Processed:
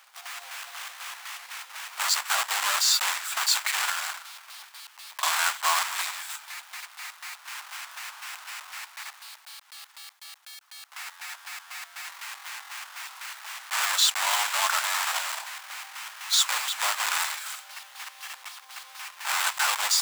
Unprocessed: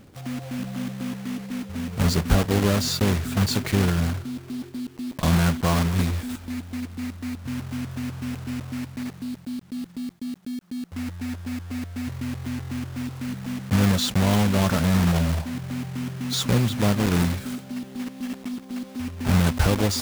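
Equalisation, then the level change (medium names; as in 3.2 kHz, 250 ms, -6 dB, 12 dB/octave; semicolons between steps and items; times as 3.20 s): steep high-pass 860 Hz 36 dB/octave; dynamic bell 7.6 kHz, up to +7 dB, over -58 dBFS, Q 7.2; +4.5 dB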